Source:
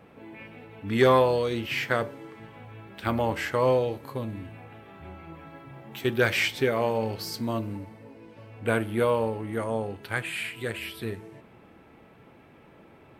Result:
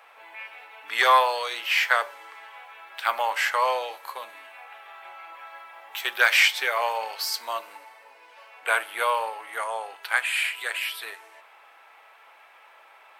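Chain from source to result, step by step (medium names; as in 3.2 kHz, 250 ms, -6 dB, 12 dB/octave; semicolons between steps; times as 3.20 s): high-pass 790 Hz 24 dB/octave; trim +7.5 dB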